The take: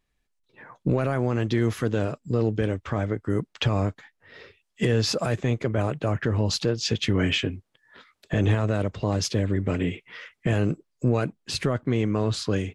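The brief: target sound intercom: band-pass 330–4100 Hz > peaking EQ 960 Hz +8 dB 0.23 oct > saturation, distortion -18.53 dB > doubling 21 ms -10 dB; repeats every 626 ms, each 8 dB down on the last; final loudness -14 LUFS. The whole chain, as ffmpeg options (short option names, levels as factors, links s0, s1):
-filter_complex "[0:a]highpass=330,lowpass=4100,equalizer=f=960:t=o:w=0.23:g=8,aecho=1:1:626|1252|1878|2504|3130:0.398|0.159|0.0637|0.0255|0.0102,asoftclip=threshold=0.119,asplit=2[s0][s1];[s1]adelay=21,volume=0.316[s2];[s0][s2]amix=inputs=2:normalize=0,volume=6.68"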